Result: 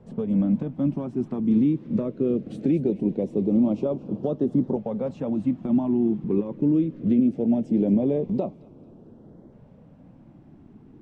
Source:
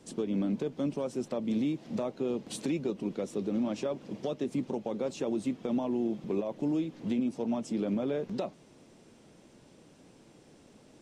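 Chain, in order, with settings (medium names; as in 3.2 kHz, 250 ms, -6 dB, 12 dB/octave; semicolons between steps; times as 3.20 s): tone controls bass +2 dB, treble -11 dB; LFO notch saw up 0.21 Hz 300–2700 Hz; tilt shelf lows +7.5 dB; on a send: feedback echo behind a high-pass 226 ms, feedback 48%, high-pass 1.5 kHz, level -15.5 dB; on the sum: tape noise reduction on one side only decoder only; trim +3 dB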